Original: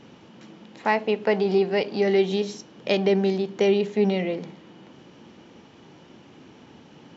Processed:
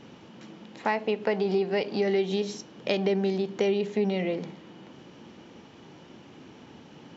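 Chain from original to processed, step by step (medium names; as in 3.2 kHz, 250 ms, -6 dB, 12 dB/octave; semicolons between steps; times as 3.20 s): compression 2.5:1, threshold -24 dBFS, peak gain reduction 6.5 dB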